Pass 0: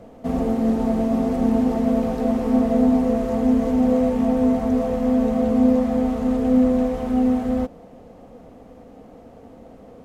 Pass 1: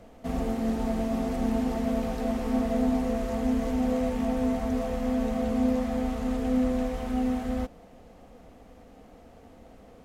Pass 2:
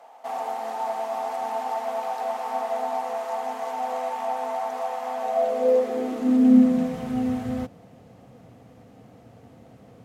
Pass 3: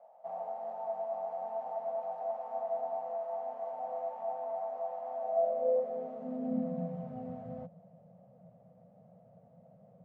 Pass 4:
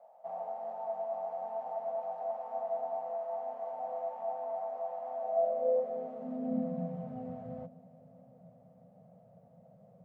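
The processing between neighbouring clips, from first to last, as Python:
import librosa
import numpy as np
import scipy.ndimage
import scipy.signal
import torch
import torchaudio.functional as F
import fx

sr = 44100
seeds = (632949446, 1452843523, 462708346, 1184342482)

y1 = fx.graphic_eq(x, sr, hz=(125, 250, 500, 1000), db=(-7, -6, -7, -4))
y2 = fx.filter_sweep_highpass(y1, sr, from_hz=830.0, to_hz=120.0, start_s=5.17, end_s=7.21, q=5.9)
y3 = fx.double_bandpass(y2, sr, hz=320.0, octaves=1.8)
y4 = fx.echo_feedback(y3, sr, ms=560, feedback_pct=53, wet_db=-23)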